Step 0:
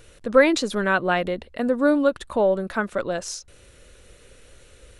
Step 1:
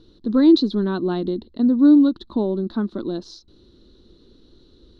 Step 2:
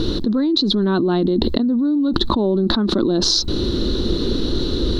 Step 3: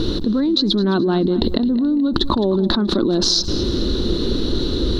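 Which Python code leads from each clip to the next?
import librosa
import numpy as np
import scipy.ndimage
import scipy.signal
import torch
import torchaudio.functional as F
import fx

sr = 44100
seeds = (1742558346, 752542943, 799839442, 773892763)

y1 = fx.curve_eq(x, sr, hz=(130.0, 220.0, 340.0, 540.0, 990.0, 2400.0, 4000.0, 8000.0), db=(0, 11, 13, -10, -3, -22, 8, -28))
y1 = y1 * 10.0 ** (-3.0 / 20.0)
y2 = fx.env_flatten(y1, sr, amount_pct=100)
y2 = y2 * 10.0 ** (-8.0 / 20.0)
y3 = fx.echo_feedback(y2, sr, ms=214, feedback_pct=39, wet_db=-15)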